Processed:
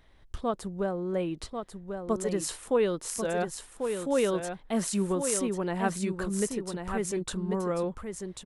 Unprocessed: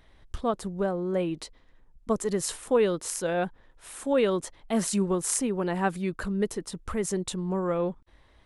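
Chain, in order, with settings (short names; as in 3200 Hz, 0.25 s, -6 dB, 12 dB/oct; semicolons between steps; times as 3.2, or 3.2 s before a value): echo 1.092 s -6.5 dB; gain -2.5 dB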